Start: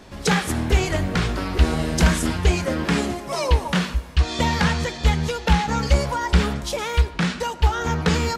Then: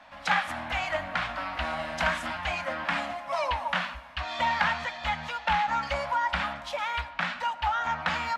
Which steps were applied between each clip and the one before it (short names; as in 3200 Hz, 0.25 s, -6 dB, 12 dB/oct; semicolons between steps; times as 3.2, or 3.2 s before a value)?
Chebyshev band-stop 270–620 Hz, order 2; three-band isolator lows -21 dB, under 470 Hz, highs -19 dB, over 3300 Hz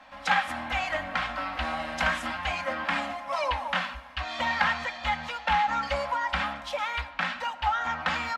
comb 3.8 ms, depth 44%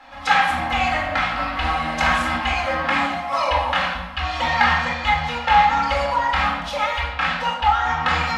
reverb RT60 0.95 s, pre-delay 23 ms, DRR -0.5 dB; gain +3.5 dB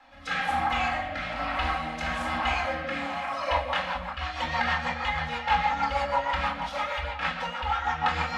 delay with a stepping band-pass 0.178 s, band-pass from 620 Hz, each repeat 0.7 oct, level -2.5 dB; rotary speaker horn 1.1 Hz, later 6.3 Hz, at 2.97; gain -6 dB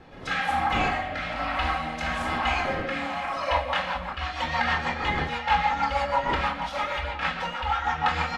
wind noise 440 Hz -43 dBFS; downsampling 32000 Hz; gain +1.5 dB